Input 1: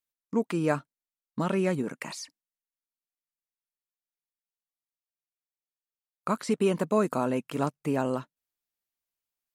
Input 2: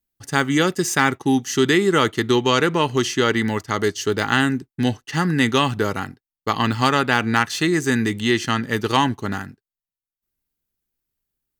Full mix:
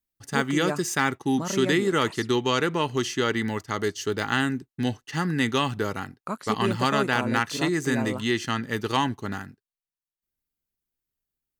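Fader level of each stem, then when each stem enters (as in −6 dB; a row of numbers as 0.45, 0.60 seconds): −3.5, −6.0 decibels; 0.00, 0.00 seconds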